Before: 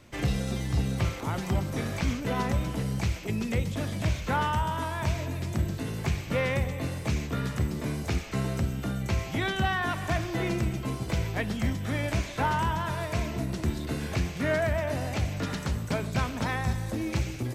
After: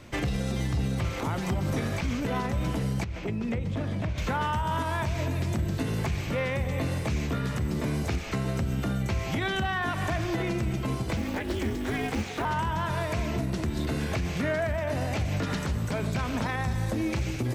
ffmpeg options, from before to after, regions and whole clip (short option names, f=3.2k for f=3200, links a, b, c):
-filter_complex "[0:a]asettb=1/sr,asplit=3[a][b][c];[a]atrim=end=3.044[d];[b]atrim=start=3.04:end=4.18,asetpts=PTS-STARTPTS,afade=t=in:d=0.004:c=qsin,afade=t=out:st=1.136:d=0.004:c=qsin,lowpass=f=1.9k:p=1,acompressor=threshold=-32dB:ratio=10:attack=3.2:release=140:knee=1:detection=peak[e];[c]atrim=start=4.176[f];[d][e]acrossfade=d=0.004:c1=hsin:c2=qsin[g];[g][f]acrossfade=d=0.004:c1=qsin:c2=hsin,asettb=1/sr,asplit=3[h][i][j];[h]atrim=end=11.174[k];[i]atrim=start=11.17:end=12.45,asetpts=PTS-STARTPTS,afade=t=in:d=0.004:c=qsin,afade=t=out:st=1.276:d=0.004:c=qsin,aeval=exprs='val(0)*sin(2*PI*150*n/s)':c=same,acrusher=bits=6:mode=log:mix=0:aa=0.000001,highpass=f=54:w=0.5412,highpass=f=54:w=1.3066[l];[j]atrim=start=12.446[m];[k][l]acrossfade=d=0.004:c1=hsin:c2=qsin[n];[n][m]acrossfade=d=0.004:c1=qsin:c2=hsin,highshelf=f=6.1k:g=-4.5,alimiter=level_in=2.5dB:limit=-24dB:level=0:latency=1:release=122,volume=-2.5dB,volume=6.5dB"